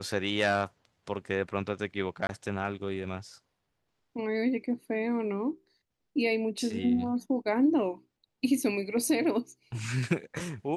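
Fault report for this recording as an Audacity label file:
2.270000	2.290000	dropout 21 ms

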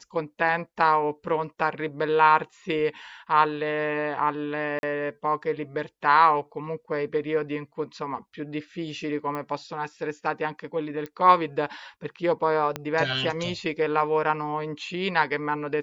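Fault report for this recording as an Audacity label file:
4.790000	4.830000	dropout 41 ms
9.350000	9.350000	pop -20 dBFS
11.060000	11.060000	pop -22 dBFS
12.760000	12.760000	pop -14 dBFS

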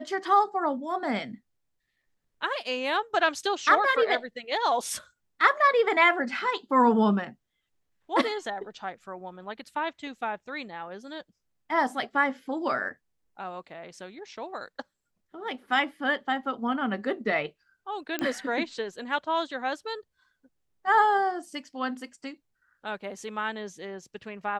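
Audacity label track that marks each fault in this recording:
18.190000	18.190000	pop -14 dBFS

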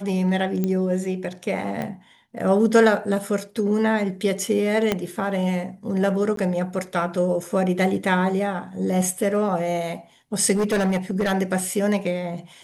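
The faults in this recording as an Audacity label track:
0.640000	0.640000	pop -12 dBFS
1.820000	1.820000	pop -16 dBFS
4.920000	4.920000	pop -7 dBFS
6.360000	6.370000	dropout 13 ms
10.550000	11.330000	clipped -17.5 dBFS

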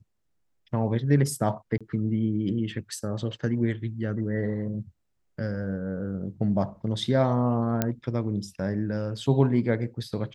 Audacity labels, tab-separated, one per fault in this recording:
1.780000	1.810000	dropout 26 ms
7.820000	7.820000	pop -9 dBFS

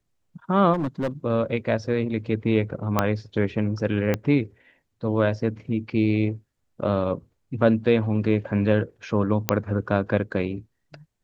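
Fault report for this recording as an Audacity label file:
0.730000	1.080000	clipped -21 dBFS
2.990000	2.990000	pop -6 dBFS
4.140000	4.140000	pop -10 dBFS
9.490000	9.490000	pop -3 dBFS

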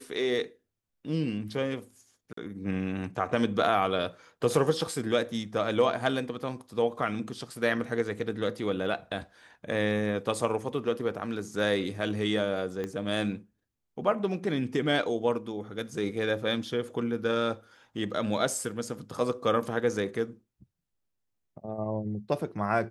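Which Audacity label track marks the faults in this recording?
2.330000	2.370000	dropout 44 ms
12.840000	12.840000	pop -21 dBFS

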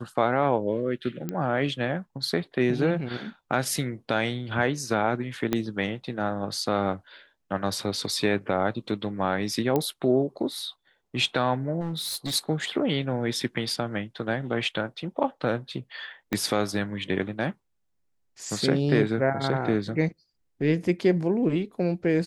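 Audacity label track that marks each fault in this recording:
1.290000	1.290000	pop -17 dBFS
5.530000	5.530000	pop -10 dBFS
9.760000	9.760000	pop -12 dBFS
11.800000	12.350000	clipped -27 dBFS
16.330000	16.330000	pop -12 dBFS

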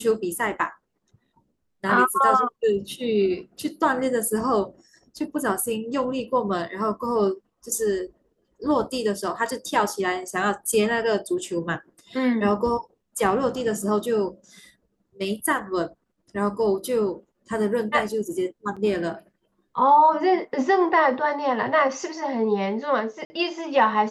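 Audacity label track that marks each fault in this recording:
18.760000	18.770000	dropout 6.1 ms
23.250000	23.300000	dropout 50 ms

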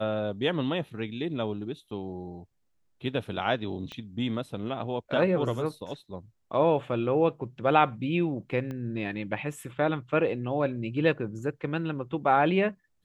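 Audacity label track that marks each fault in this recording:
3.920000	3.920000	pop -25 dBFS
8.710000	8.710000	pop -25 dBFS

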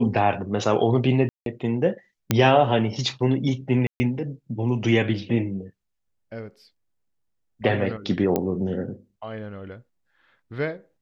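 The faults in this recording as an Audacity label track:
1.290000	1.460000	dropout 172 ms
2.310000	2.310000	pop -4 dBFS
3.870000	4.000000	dropout 130 ms
8.360000	8.360000	pop -10 dBFS

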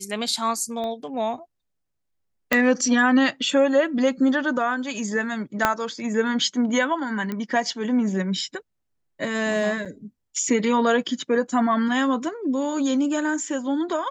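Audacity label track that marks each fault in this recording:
0.840000	0.840000	pop -21 dBFS
2.530000	2.530000	pop -4 dBFS
5.650000	5.650000	pop -4 dBFS
7.320000	7.320000	pop -16 dBFS
9.850000	9.860000	dropout 6 ms

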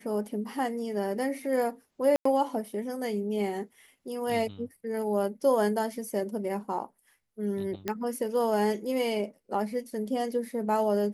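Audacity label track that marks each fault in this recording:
2.160000	2.250000	dropout 94 ms
7.880000	7.880000	pop -16 dBFS

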